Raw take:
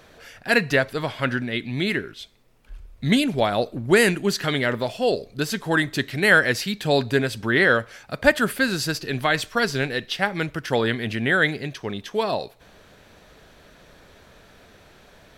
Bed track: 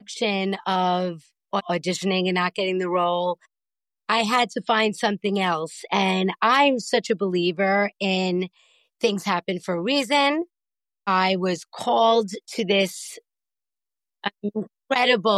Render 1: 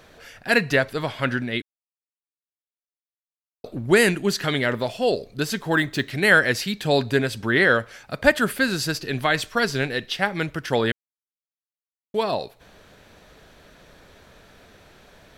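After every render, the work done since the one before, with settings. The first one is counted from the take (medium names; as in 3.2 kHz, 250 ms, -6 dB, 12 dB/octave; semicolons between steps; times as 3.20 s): 1.62–3.64 s: mute; 5.58–6.10 s: decimation joined by straight lines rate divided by 2×; 10.92–12.14 s: mute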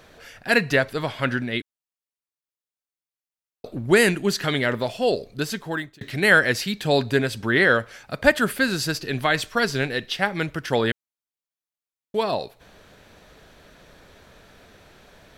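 5.13–6.01 s: fade out equal-power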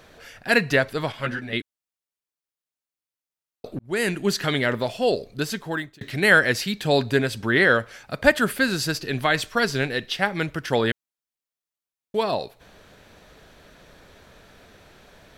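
1.12–1.53 s: three-phase chorus; 3.79–4.28 s: fade in linear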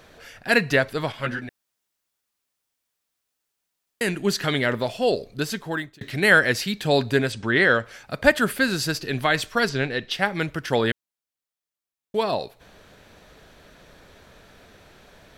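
1.49–4.01 s: room tone; 7.32–7.85 s: Chebyshev low-pass 9 kHz, order 6; 9.69–10.11 s: distance through air 73 m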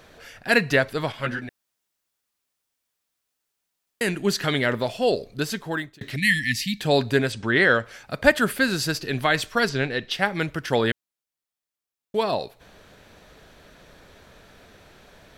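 6.16–6.80 s: brick-wall FIR band-stop 300–1700 Hz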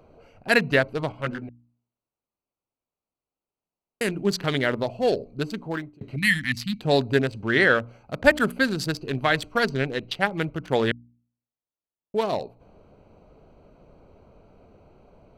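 local Wiener filter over 25 samples; de-hum 59.66 Hz, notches 5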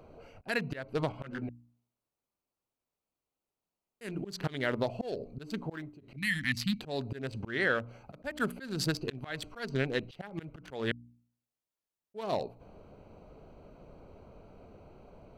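compression 3:1, threshold -27 dBFS, peak gain reduction 12.5 dB; slow attack 214 ms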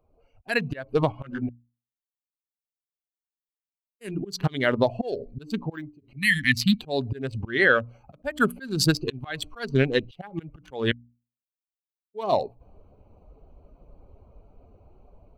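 expander on every frequency bin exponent 1.5; level rider gain up to 12 dB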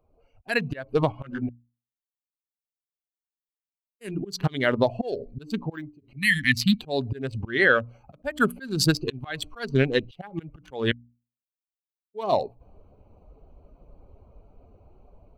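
no audible change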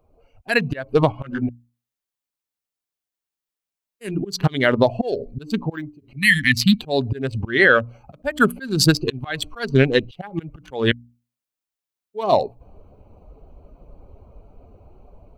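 trim +6 dB; peak limiter -3 dBFS, peak gain reduction 3 dB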